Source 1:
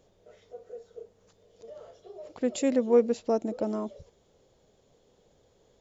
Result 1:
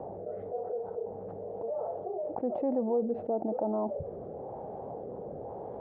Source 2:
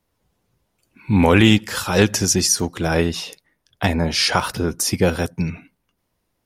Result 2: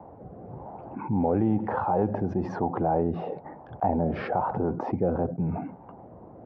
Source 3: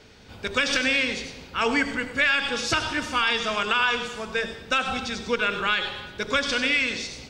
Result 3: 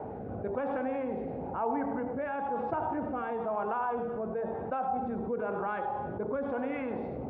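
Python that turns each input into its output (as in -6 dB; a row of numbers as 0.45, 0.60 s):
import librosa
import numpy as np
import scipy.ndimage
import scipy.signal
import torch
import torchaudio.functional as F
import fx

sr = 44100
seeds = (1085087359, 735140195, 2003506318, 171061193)

y = scipy.signal.sosfilt(scipy.signal.butter(2, 98.0, 'highpass', fs=sr, output='sos'), x)
y = fx.rotary(y, sr, hz=1.0)
y = fx.ladder_lowpass(y, sr, hz=880.0, resonance_pct=70)
y = fx.env_flatten(y, sr, amount_pct=70)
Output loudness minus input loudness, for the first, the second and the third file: -7.5, -9.5, -9.5 LU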